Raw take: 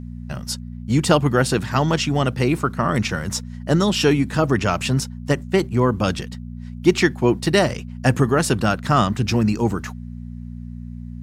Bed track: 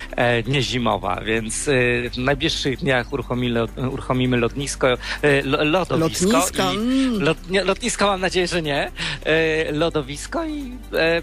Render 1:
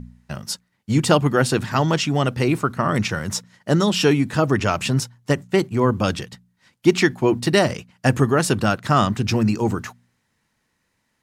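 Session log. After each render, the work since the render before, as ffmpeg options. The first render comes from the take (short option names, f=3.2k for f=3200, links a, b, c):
-af "bandreject=f=60:t=h:w=4,bandreject=f=120:t=h:w=4,bandreject=f=180:t=h:w=4,bandreject=f=240:t=h:w=4"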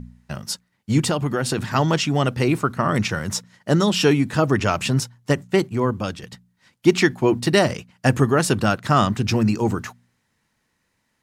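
-filter_complex "[0:a]asettb=1/sr,asplit=3[a][b][c];[a]atrim=end=1.064[d];[b]atrim=start=1.06:end=1.58,asetpts=PTS-STARTPTS,afade=t=in:d=0.004:c=qsin,afade=t=out:st=0.516:d=0.004:c=qsin,acompressor=threshold=-18dB:ratio=4:attack=3.2:release=140:knee=1:detection=peak[e];[c]atrim=start=1.576[f];[d][e]acrossfade=d=0.004:c1=hsin:c2=qsin[g];[g][f]acrossfade=d=0.004:c1=qsin:c2=hsin,asplit=2[h][i];[h]atrim=end=6.23,asetpts=PTS-STARTPTS,afade=t=out:st=5.56:d=0.67:silence=0.334965[j];[i]atrim=start=6.23,asetpts=PTS-STARTPTS,afade=t=in:d=0.004:c=hsin:silence=0.334965[k];[j][k]concat=n=2:v=0:a=1"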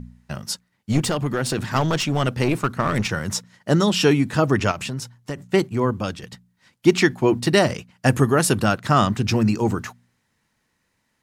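-filter_complex "[0:a]asettb=1/sr,asplit=3[a][b][c];[a]atrim=end=0.924[d];[b]atrim=start=0.92:end=3.09,asetpts=PTS-STARTPTS,afade=t=in:d=0.004:c=qsin,afade=t=out:st=2.166:d=0.004:c=qsin,aeval=exprs='clip(val(0),-1,0.0794)':c=same[e];[c]atrim=start=3.086[f];[d][e]acrossfade=d=0.004:c1=hsin:c2=qsin[g];[g][f]acrossfade=d=0.004:c1=qsin:c2=hsin,asettb=1/sr,asplit=3[h][i][j];[h]atrim=end=4.714[k];[i]atrim=start=4.71:end=5.41,asetpts=PTS-STARTPTS,afade=t=in:d=0.004:c=qsin,afade=t=out:st=0.696:d=0.004:c=qsin,acompressor=threshold=-26dB:ratio=4:attack=3.2:release=140:knee=1:detection=peak[l];[j]atrim=start=5.406[m];[k][l]acrossfade=d=0.004:c1=hsin:c2=qsin[n];[n][m]acrossfade=d=0.004:c1=qsin:c2=hsin,asettb=1/sr,asplit=3[o][p][q];[o]atrim=end=8.084[r];[p]atrim=start=8.08:end=8.64,asetpts=PTS-STARTPTS,afade=t=in:d=0.004:c=qsin,afade=t=out:st=0.556:d=0.004:c=qsin,equalizer=f=11k:w=1.5:g=7.5[s];[q]atrim=start=8.636[t];[r][s]acrossfade=d=0.004:c1=hsin:c2=qsin[u];[u][t]acrossfade=d=0.004:c1=qsin:c2=hsin"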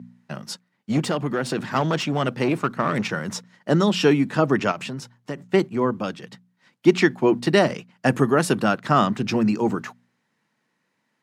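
-af "highpass=f=150:w=0.5412,highpass=f=150:w=1.3066,highshelf=f=5.5k:g=-11.5"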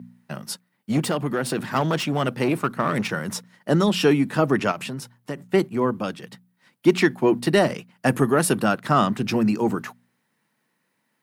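-af "aexciter=amount=4.6:drive=1.3:freq=9k,asoftclip=type=tanh:threshold=-4dB"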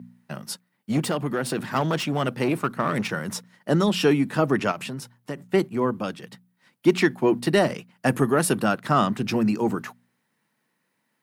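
-af "volume=-1.5dB"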